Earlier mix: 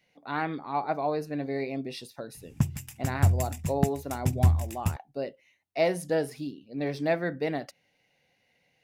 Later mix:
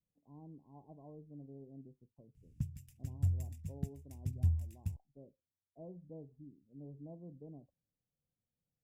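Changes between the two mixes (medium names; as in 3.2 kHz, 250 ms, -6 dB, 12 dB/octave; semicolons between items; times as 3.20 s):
speech: add brick-wall FIR low-pass 1.1 kHz; master: add amplifier tone stack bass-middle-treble 10-0-1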